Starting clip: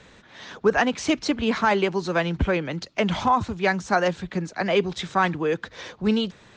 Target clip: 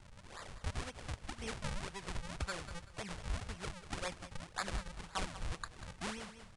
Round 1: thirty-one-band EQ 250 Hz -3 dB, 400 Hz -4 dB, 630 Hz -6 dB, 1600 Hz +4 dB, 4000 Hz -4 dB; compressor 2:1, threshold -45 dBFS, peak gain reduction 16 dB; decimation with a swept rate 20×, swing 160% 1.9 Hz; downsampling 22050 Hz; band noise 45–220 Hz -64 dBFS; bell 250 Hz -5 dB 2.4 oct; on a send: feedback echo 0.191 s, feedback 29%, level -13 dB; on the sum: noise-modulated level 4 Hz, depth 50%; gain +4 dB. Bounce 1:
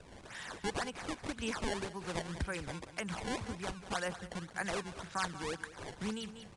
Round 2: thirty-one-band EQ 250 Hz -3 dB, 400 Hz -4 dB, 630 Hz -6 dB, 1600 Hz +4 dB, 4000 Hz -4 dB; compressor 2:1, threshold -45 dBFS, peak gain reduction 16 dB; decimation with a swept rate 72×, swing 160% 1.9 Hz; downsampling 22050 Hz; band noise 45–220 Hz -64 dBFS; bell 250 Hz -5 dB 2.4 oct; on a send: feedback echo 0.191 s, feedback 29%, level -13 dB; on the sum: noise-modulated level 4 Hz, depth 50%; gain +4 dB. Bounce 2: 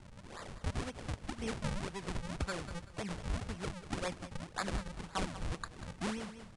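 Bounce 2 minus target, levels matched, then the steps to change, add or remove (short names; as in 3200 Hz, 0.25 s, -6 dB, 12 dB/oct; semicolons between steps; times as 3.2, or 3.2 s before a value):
250 Hz band +4.5 dB
change: bell 250 Hz -13 dB 2.4 oct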